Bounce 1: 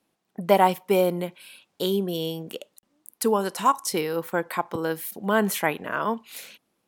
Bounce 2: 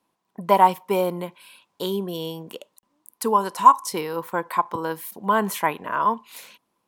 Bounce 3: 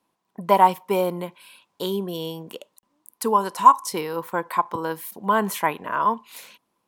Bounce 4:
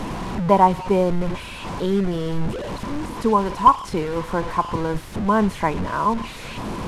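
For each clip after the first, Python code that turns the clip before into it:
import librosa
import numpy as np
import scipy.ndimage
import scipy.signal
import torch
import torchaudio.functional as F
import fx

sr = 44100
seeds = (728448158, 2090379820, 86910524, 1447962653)

y1 = fx.peak_eq(x, sr, hz=1000.0, db=14.0, octaves=0.29)
y1 = y1 * 10.0 ** (-2.0 / 20.0)
y2 = y1
y3 = fx.delta_mod(y2, sr, bps=64000, step_db=-25.0)
y3 = fx.riaa(y3, sr, side='playback')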